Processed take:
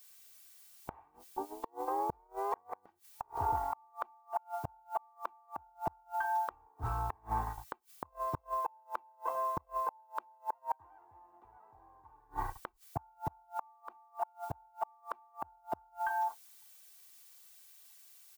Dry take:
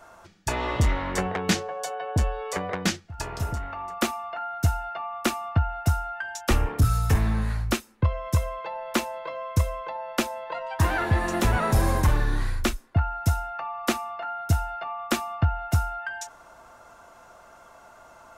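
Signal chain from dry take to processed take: tape start at the beginning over 2.69 s; added harmonics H 2 -26 dB, 8 -26 dB, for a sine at -12.5 dBFS; band-pass 920 Hz, Q 11; gate -51 dBFS, range -47 dB; tilt -3.5 dB/oct; added noise blue -73 dBFS; comb 2.6 ms, depth 64%; flipped gate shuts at -35 dBFS, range -35 dB; gain +13 dB

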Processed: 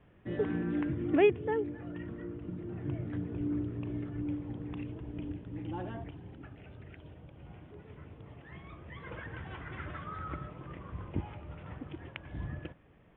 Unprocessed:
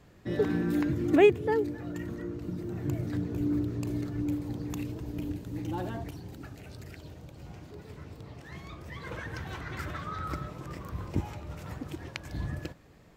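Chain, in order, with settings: steep low-pass 3400 Hz 96 dB/oct; gain -4.5 dB

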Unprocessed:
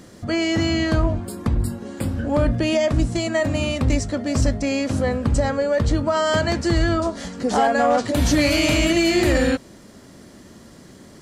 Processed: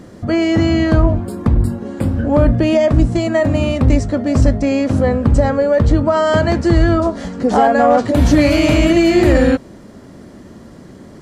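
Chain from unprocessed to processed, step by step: high shelf 2100 Hz -11.5 dB; gain +7.5 dB

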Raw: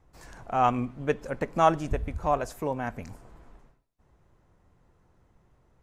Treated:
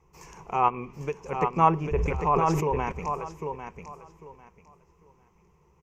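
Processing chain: ripple EQ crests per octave 0.77, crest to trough 14 dB; 0.68–1.27 compressor, threshold -28 dBFS, peak gain reduction 12.5 dB; treble ducked by the level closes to 2200 Hz, closed at -20.5 dBFS; low shelf 88 Hz -6.5 dB; feedback echo 0.798 s, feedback 21%, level -6 dB; 1.77–2.92 sustainer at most 29 dB/s

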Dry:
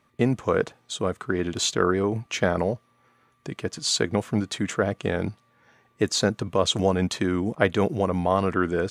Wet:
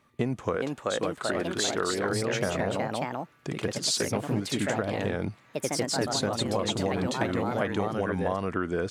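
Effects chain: echoes that change speed 0.434 s, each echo +2 st, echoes 3; 0.56–2.1 bell 110 Hz -8 dB 2.3 oct; compressor, threshold -24 dBFS, peak gain reduction 10 dB

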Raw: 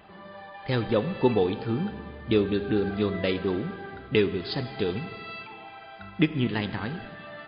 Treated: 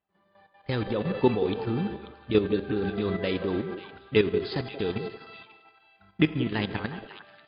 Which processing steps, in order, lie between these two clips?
expander -32 dBFS; level quantiser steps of 10 dB; delay with a stepping band-pass 0.179 s, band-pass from 450 Hz, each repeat 1.4 oct, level -6.5 dB; gain +3 dB

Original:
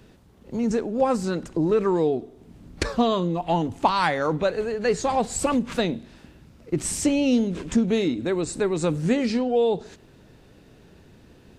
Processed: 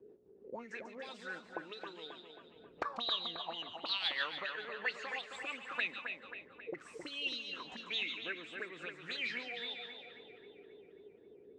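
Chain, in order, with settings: auto-wah 390–4000 Hz, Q 9.4, up, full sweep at -16.5 dBFS; rotary speaker horn 6.3 Hz, later 0.65 Hz, at 5.28; split-band echo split 2900 Hz, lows 0.268 s, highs 0.143 s, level -6 dB; gain +7 dB

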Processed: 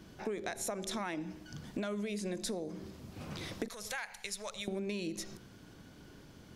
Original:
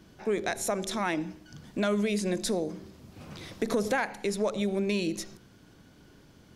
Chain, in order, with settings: 3.68–4.68 passive tone stack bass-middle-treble 10-0-10; compressor 6:1, threshold -36 dBFS, peak gain reduction 12 dB; gain +1 dB

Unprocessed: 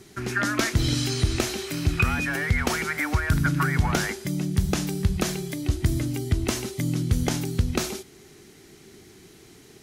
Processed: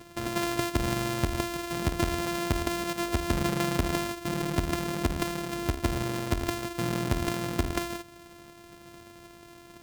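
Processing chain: sample sorter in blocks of 128 samples; compressor 1.5:1, threshold -33 dBFS, peak gain reduction 6.5 dB

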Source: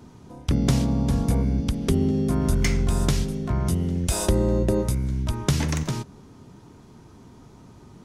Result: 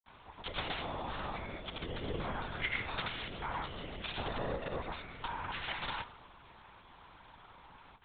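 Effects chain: HPF 1000 Hz 12 dB/oct; compressor 2:1, threshold -37 dBFS, peak gain reduction 8 dB; in parallel at -4.5 dB: wavefolder -36.5 dBFS; on the sum: grains; shoebox room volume 3000 m³, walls furnished, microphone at 1.1 m; LPC vocoder at 8 kHz whisper; gain +1.5 dB

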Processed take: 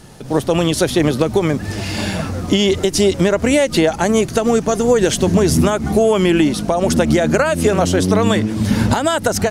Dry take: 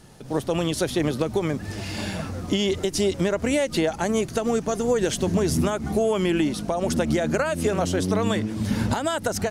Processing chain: gain +8.5 dB

